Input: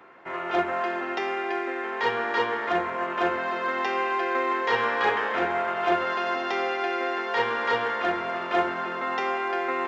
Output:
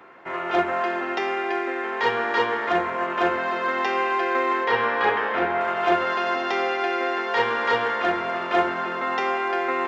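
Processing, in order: 4.64–5.61 s: distance through air 130 m; trim +3 dB

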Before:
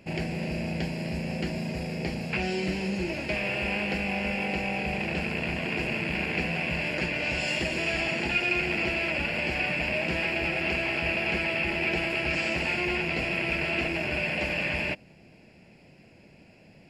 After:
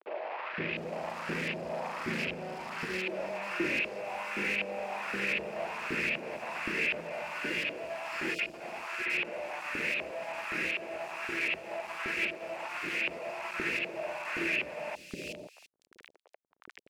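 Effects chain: treble shelf 4.6 kHz +5 dB; band-stop 760 Hz, Q 12; compressor with a negative ratio -33 dBFS, ratio -0.5; companded quantiser 2-bit; LFO band-pass saw up 1.3 Hz 360–2700 Hz; three bands offset in time mids, lows, highs 520/710 ms, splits 480/3700 Hz; trim +3.5 dB

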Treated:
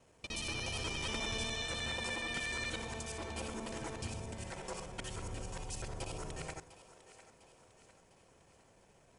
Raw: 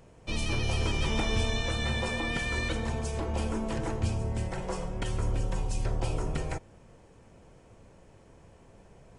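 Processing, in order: time reversed locally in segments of 60 ms; tilt EQ +2 dB/octave; two-band feedback delay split 390 Hz, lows 100 ms, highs 702 ms, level -14.5 dB; trim -7 dB

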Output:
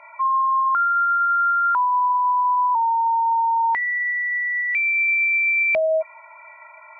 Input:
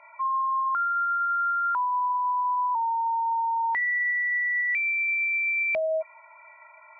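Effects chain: 2.32–4.95 s: dynamic bell 1.8 kHz, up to -7 dB, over -42 dBFS, Q 4.9; trim +6.5 dB

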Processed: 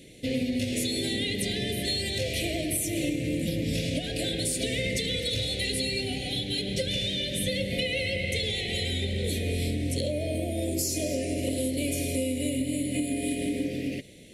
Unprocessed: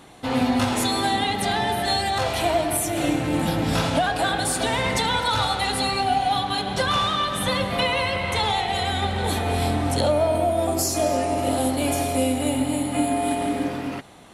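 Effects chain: elliptic band-stop 540–2100 Hz, stop band 60 dB; compression, threshold -25 dBFS, peak gain reduction 7 dB

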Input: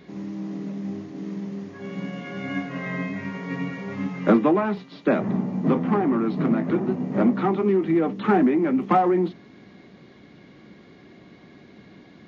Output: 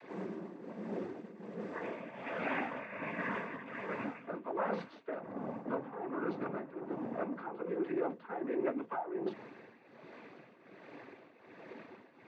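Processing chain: noise-vocoded speech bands 16; reverse; compression 6:1, threshold -30 dBFS, peak gain reduction 18 dB; reverse; three-band isolator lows -16 dB, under 380 Hz, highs -15 dB, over 2.2 kHz; tremolo triangle 1.3 Hz, depth 80%; trim +5.5 dB

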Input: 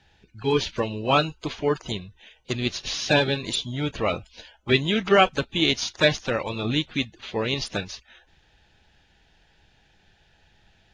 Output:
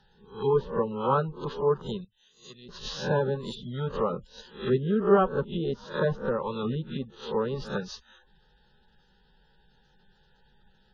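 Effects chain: reverse spectral sustain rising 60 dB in 0.39 s; 4.10–4.90 s: dynamic bell 790 Hz, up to -5 dB, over -43 dBFS, Q 2.1; spectral gate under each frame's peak -25 dB strong; low-pass that closes with the level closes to 1.1 kHz, closed at -20 dBFS; 2.04–2.69 s: pre-emphasis filter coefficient 0.9; static phaser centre 450 Hz, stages 8

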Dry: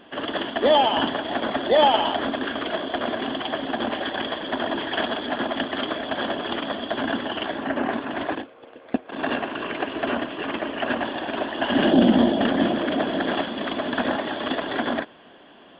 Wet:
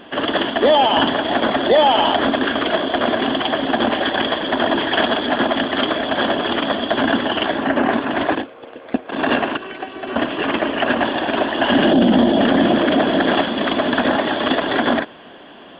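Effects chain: 9.57–10.16 s: feedback comb 380 Hz, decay 0.23 s, harmonics all, mix 80%; peak limiter -14 dBFS, peak gain reduction 8.5 dB; trim +8.5 dB

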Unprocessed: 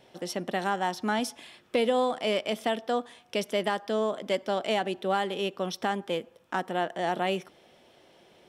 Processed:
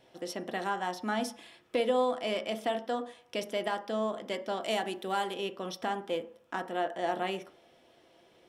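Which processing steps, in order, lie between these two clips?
4.62–5.34 s: treble shelf 6.1 kHz +11.5 dB; on a send: reverberation RT60 0.45 s, pre-delay 3 ms, DRR 6 dB; on the sum: trim -5 dB

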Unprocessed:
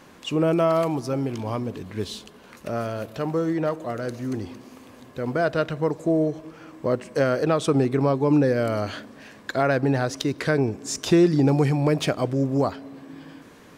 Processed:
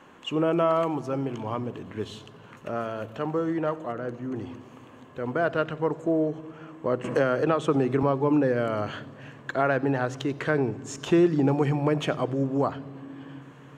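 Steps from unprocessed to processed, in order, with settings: 3.92–4.36 s: treble shelf 2.6 kHz -9.5 dB; reverberation RT60 3.5 s, pre-delay 62 ms, DRR 21 dB; 7.04–8.03 s: three bands compressed up and down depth 70%; trim -7.5 dB

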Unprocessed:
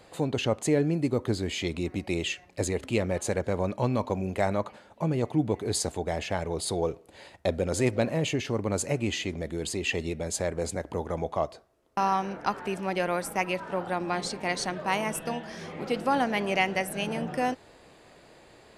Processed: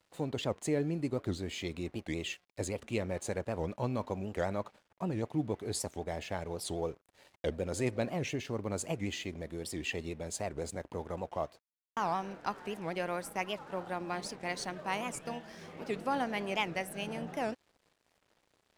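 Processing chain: crossover distortion -51 dBFS; warped record 78 rpm, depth 250 cents; trim -7 dB

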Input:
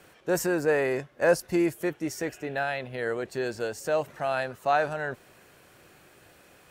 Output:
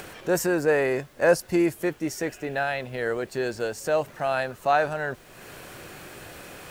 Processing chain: upward compressor, threshold -34 dBFS; added noise pink -59 dBFS; trim +2.5 dB

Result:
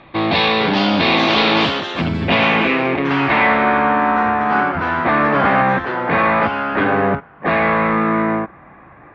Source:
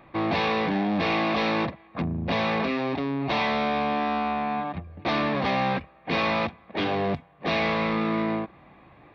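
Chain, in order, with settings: ever faster or slower copies 487 ms, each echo +4 st, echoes 3, each echo -6 dB; low-pass sweep 3.9 kHz -> 1.6 kHz, 1.38–4.02 s; trim +7.5 dB

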